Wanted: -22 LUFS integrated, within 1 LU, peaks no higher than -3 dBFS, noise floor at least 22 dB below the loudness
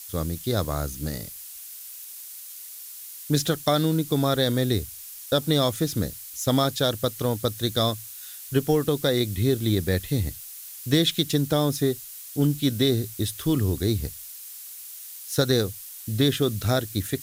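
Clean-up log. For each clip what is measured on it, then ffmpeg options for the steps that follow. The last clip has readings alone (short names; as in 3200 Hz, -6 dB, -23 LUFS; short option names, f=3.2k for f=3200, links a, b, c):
noise floor -41 dBFS; noise floor target -47 dBFS; loudness -25.0 LUFS; peak -7.0 dBFS; loudness target -22.0 LUFS
-> -af "afftdn=nr=6:nf=-41"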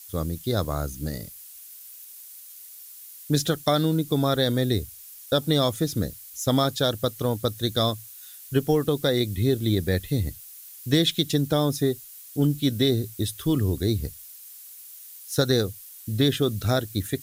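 noise floor -45 dBFS; noise floor target -47 dBFS
-> -af "afftdn=nr=6:nf=-45"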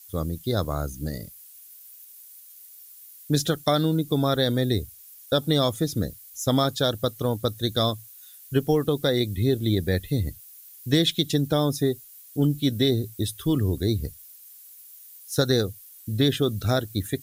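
noise floor -48 dBFS; loudness -25.0 LUFS; peak -7.0 dBFS; loudness target -22.0 LUFS
-> -af "volume=3dB"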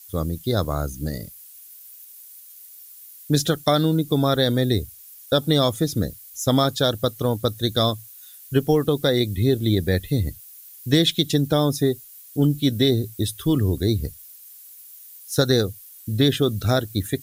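loudness -22.0 LUFS; peak -4.0 dBFS; noise floor -45 dBFS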